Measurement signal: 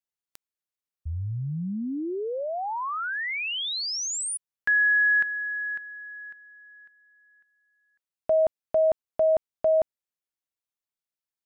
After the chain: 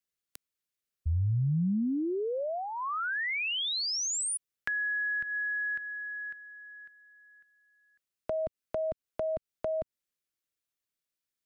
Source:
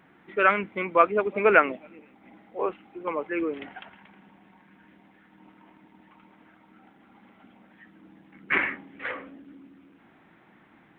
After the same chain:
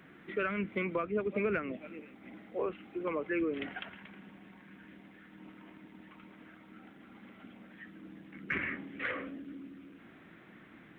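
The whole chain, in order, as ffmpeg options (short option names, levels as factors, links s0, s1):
-filter_complex "[0:a]equalizer=f=860:t=o:w=0.57:g=-10,acrossover=split=200[s0][s1];[s1]acompressor=threshold=0.0251:ratio=20:attack=4.3:release=279:knee=6:detection=peak[s2];[s0][s2]amix=inputs=2:normalize=0,volume=1.41"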